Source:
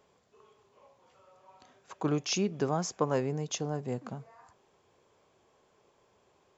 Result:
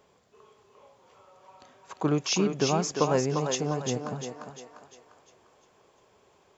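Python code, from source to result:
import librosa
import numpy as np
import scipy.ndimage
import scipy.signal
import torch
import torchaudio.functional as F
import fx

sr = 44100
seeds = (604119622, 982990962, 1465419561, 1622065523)

y = fx.echo_thinned(x, sr, ms=349, feedback_pct=46, hz=390.0, wet_db=-4)
y = y * librosa.db_to_amplitude(4.0)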